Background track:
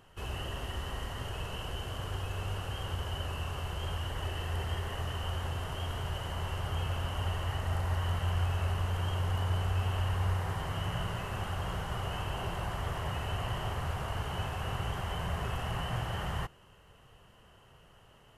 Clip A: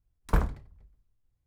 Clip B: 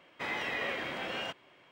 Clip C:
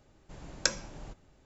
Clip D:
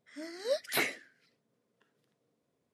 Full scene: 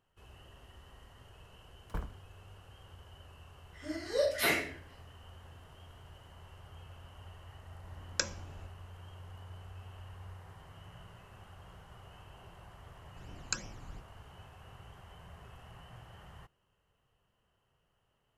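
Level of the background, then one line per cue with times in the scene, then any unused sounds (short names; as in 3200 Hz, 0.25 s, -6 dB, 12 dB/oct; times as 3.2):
background track -18 dB
1.61 add A -14 dB
3.66 add D -10.5 dB + shoebox room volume 51 m³, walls mixed, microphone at 2.7 m
7.54 add C -7.5 dB + three-band expander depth 40%
12.87 add C -4 dB + phaser stages 12, 2.8 Hz, lowest notch 550–1400 Hz
not used: B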